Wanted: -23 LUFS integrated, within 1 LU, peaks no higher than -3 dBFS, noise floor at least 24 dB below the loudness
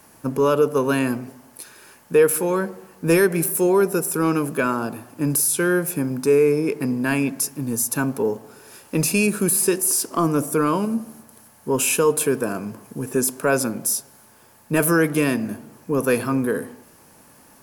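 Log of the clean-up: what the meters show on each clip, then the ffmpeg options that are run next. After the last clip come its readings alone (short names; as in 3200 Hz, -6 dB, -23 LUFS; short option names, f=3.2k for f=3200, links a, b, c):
loudness -21.0 LUFS; peak -6.0 dBFS; loudness target -23.0 LUFS
-> -af "volume=-2dB"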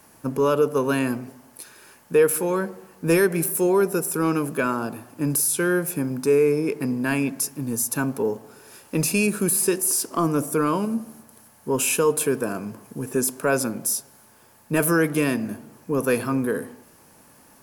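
loudness -23.0 LUFS; peak -8.0 dBFS; noise floor -53 dBFS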